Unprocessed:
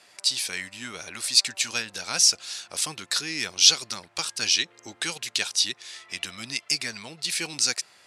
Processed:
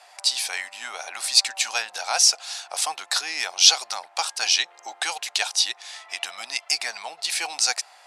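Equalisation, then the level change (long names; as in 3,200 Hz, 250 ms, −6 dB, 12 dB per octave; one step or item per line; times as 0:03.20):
high-pass with resonance 760 Hz, resonance Q 4.9
+1.5 dB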